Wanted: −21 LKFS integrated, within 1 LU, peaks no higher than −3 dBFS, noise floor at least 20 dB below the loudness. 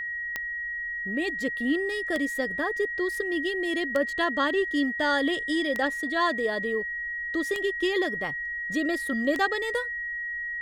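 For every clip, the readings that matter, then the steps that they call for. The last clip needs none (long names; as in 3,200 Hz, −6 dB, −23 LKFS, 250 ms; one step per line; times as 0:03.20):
number of clicks 6; interfering tone 1,900 Hz; level of the tone −30 dBFS; integrated loudness −27.0 LKFS; sample peak −10.5 dBFS; target loudness −21.0 LKFS
→ click removal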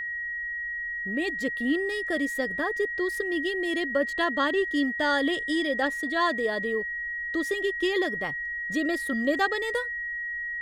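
number of clicks 0; interfering tone 1,900 Hz; level of the tone −30 dBFS
→ notch filter 1,900 Hz, Q 30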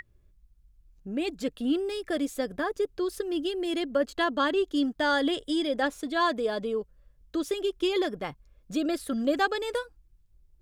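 interfering tone none found; integrated loudness −29.0 LKFS; sample peak −12.0 dBFS; target loudness −21.0 LKFS
→ level +8 dB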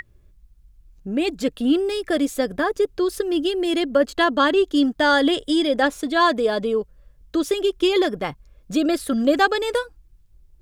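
integrated loudness −21.0 LKFS; sample peak −4.0 dBFS; background noise floor −54 dBFS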